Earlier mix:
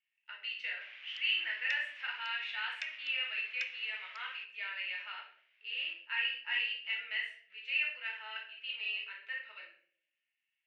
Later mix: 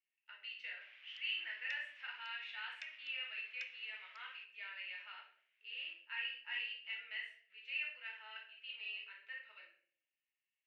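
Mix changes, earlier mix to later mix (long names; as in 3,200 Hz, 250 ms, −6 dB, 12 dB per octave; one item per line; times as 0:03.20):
speech −8.0 dB
background −9.0 dB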